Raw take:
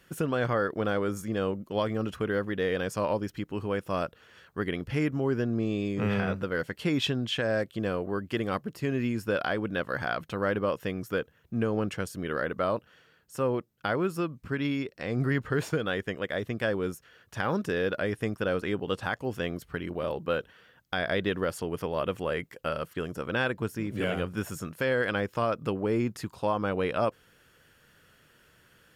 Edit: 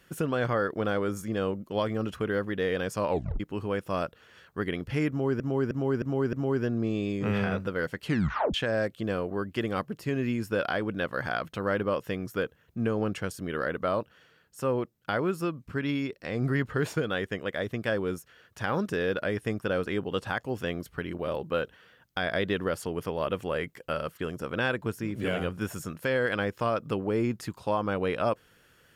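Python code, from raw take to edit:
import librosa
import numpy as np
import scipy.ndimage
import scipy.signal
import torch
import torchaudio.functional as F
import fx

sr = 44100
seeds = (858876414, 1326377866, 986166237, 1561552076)

y = fx.edit(x, sr, fx.tape_stop(start_s=3.1, length_s=0.3),
    fx.repeat(start_s=5.09, length_s=0.31, count=5),
    fx.tape_stop(start_s=6.81, length_s=0.49), tone=tone)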